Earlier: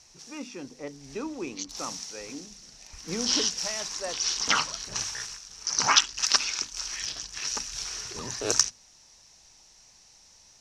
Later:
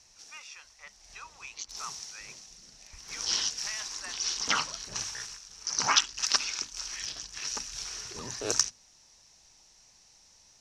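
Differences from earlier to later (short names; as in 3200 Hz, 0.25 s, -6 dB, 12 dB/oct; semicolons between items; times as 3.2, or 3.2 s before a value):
speech: add HPF 1100 Hz 24 dB/oct; background -3.5 dB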